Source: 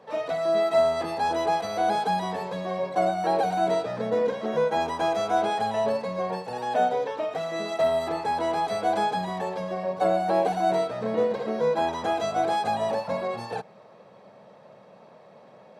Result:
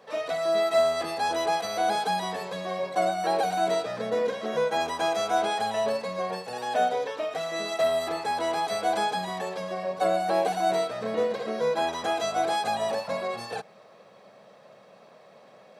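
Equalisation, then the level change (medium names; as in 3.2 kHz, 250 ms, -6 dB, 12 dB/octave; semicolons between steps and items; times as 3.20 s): tilt EQ +2 dB/octave; band-stop 900 Hz, Q 10; 0.0 dB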